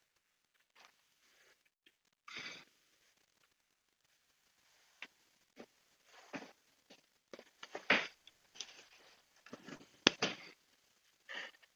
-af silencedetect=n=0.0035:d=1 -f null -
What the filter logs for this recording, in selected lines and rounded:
silence_start: 0.85
silence_end: 2.28 | silence_duration: 1.43
silence_start: 2.60
silence_end: 5.02 | silence_duration: 2.42